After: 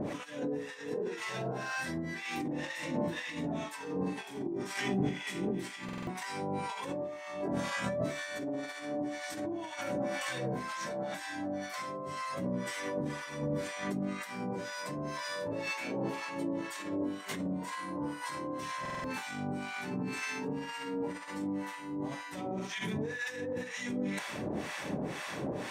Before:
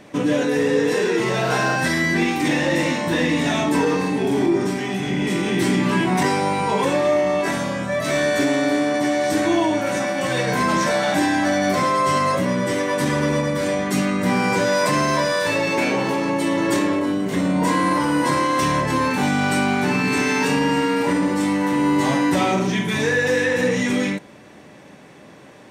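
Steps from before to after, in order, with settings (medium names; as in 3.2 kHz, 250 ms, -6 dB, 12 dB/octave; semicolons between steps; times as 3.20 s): compressor with a negative ratio -32 dBFS, ratio -1; harmonic tremolo 2 Hz, depth 100%, crossover 840 Hz; buffer glitch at 5.84/18.81 s, samples 2048, times 4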